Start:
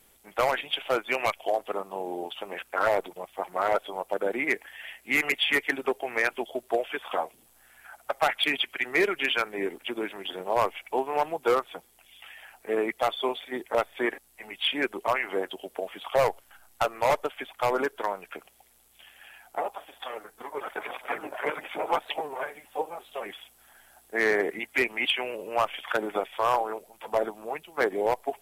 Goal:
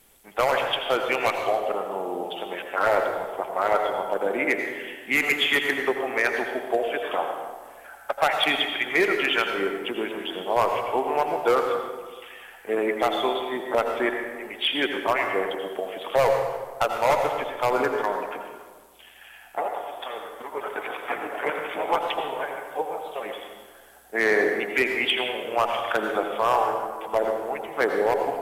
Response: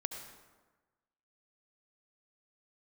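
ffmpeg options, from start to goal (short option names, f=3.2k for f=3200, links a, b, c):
-filter_complex "[1:a]atrim=start_sample=2205,asetrate=37485,aresample=44100[a];[0:a][a]afir=irnorm=-1:irlink=0,volume=2.5dB"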